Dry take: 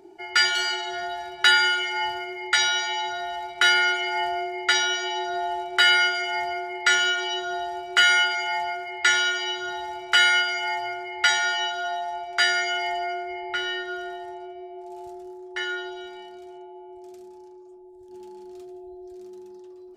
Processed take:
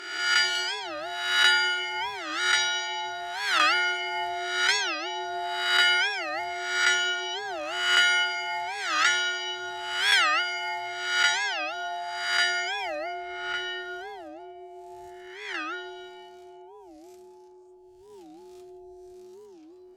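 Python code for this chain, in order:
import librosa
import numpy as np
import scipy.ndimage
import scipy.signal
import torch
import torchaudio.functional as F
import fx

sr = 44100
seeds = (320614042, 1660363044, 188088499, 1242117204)

y = fx.spec_swells(x, sr, rise_s=0.98)
y = fx.hum_notches(y, sr, base_hz=60, count=6)
y = fx.record_warp(y, sr, rpm=45.0, depth_cents=250.0)
y = y * 10.0 ** (-4.5 / 20.0)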